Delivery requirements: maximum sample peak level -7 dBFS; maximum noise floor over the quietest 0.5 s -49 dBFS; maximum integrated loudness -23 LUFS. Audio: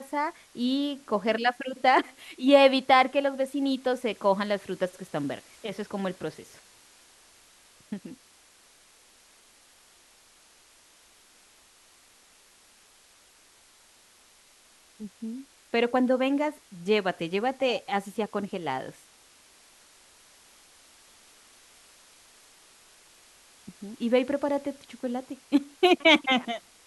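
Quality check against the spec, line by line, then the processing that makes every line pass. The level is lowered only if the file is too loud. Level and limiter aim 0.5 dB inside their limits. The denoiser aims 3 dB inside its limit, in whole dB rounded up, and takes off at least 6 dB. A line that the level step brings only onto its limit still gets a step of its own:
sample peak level -6.0 dBFS: fail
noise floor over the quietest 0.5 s -58 dBFS: OK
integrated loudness -26.5 LUFS: OK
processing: limiter -7.5 dBFS

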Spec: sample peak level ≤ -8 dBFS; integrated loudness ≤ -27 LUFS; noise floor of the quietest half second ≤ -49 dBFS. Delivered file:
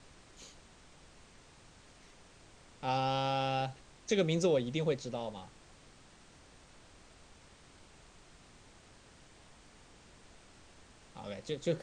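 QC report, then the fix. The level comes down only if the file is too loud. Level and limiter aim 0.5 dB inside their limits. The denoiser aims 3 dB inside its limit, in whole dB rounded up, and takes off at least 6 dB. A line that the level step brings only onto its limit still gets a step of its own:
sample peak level -18.5 dBFS: OK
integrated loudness -34.0 LUFS: OK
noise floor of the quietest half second -59 dBFS: OK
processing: none

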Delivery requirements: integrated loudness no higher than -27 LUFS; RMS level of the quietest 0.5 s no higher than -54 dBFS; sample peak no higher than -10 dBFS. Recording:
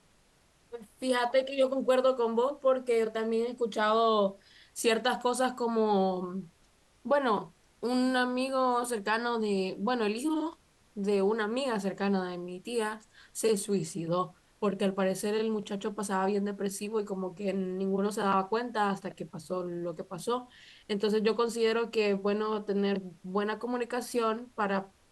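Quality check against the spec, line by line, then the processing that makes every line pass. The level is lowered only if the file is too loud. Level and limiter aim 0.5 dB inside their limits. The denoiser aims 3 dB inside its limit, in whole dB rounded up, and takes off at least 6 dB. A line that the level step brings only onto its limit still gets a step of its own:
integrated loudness -30.5 LUFS: OK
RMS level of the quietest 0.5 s -65 dBFS: OK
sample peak -14.0 dBFS: OK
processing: none

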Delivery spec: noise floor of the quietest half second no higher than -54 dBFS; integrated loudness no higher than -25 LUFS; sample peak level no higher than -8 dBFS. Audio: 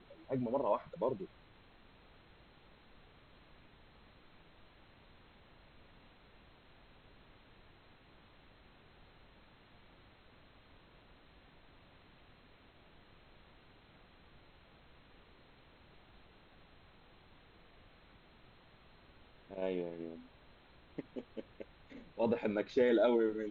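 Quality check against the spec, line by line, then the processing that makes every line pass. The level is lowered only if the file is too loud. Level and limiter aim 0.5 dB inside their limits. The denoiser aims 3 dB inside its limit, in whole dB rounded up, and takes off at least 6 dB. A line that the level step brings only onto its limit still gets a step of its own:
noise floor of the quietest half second -62 dBFS: OK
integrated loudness -36.0 LUFS: OK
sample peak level -19.5 dBFS: OK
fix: none

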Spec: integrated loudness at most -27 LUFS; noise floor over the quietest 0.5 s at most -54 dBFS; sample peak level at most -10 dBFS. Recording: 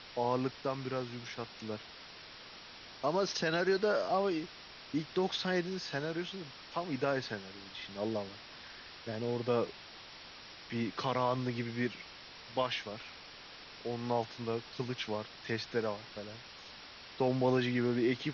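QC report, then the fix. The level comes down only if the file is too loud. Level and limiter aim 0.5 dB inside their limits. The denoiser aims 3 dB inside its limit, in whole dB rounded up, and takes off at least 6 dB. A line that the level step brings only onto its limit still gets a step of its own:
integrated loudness -35.5 LUFS: OK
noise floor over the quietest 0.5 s -51 dBFS: fail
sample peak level -18.5 dBFS: OK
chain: denoiser 6 dB, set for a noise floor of -51 dBFS

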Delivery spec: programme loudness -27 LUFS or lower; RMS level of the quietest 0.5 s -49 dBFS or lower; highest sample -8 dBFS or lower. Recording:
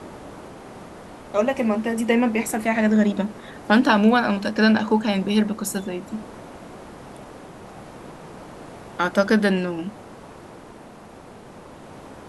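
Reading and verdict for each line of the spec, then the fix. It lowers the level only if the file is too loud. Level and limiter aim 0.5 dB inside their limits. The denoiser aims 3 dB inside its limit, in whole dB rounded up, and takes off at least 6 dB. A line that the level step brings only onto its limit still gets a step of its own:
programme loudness -21.0 LUFS: fail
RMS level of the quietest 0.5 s -43 dBFS: fail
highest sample -3.5 dBFS: fail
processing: gain -6.5 dB

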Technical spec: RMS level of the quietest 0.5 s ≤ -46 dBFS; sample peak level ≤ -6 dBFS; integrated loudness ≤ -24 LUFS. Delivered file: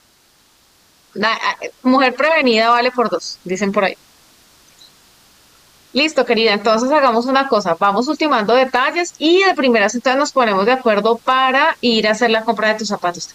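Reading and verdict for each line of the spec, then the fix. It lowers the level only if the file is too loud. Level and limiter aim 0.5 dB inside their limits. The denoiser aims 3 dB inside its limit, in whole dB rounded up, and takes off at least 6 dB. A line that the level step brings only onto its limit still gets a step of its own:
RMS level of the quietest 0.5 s -54 dBFS: OK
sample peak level -4.0 dBFS: fail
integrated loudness -15.0 LUFS: fail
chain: gain -9.5 dB

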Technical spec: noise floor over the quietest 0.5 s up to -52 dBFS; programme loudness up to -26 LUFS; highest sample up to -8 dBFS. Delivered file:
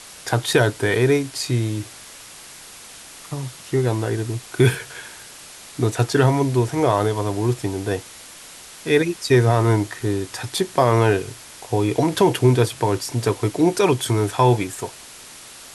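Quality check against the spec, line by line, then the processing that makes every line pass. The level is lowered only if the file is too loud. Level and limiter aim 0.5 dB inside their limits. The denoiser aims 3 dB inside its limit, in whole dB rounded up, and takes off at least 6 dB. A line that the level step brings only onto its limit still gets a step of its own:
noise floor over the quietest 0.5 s -41 dBFS: fail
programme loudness -20.5 LUFS: fail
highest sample -4.5 dBFS: fail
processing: denoiser 8 dB, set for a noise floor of -41 dBFS; gain -6 dB

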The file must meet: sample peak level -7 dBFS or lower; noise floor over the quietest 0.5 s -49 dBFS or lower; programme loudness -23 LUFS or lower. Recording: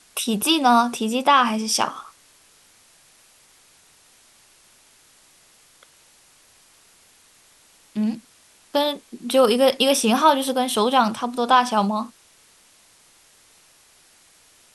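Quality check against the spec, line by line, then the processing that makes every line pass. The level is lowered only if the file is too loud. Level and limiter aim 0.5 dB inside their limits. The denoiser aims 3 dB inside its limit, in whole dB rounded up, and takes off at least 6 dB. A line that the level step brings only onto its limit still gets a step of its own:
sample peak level -3.5 dBFS: fail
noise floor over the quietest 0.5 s -55 dBFS: OK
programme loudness -19.5 LUFS: fail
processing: gain -4 dB

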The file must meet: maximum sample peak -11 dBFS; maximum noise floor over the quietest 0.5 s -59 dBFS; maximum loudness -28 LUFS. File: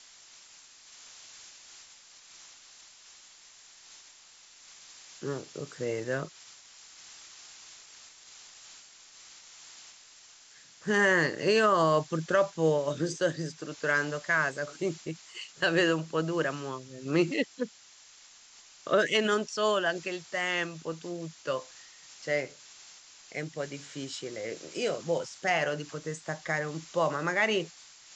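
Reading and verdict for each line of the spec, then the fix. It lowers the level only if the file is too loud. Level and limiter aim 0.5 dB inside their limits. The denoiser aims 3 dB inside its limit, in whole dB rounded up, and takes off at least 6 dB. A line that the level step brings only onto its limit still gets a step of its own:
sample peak -12.5 dBFS: OK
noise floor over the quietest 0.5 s -55 dBFS: fail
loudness -30.0 LUFS: OK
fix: denoiser 7 dB, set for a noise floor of -55 dBFS

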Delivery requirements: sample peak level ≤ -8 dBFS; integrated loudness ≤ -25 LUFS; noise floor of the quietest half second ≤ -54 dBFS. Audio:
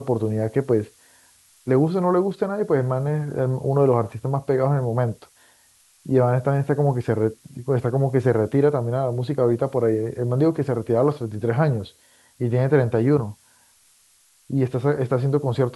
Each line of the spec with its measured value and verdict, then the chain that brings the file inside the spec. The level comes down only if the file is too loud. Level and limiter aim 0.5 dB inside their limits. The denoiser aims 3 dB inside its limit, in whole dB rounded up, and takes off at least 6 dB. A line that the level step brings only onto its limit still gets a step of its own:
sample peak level -5.5 dBFS: fail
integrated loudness -22.0 LUFS: fail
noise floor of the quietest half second -58 dBFS: OK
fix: gain -3.5 dB

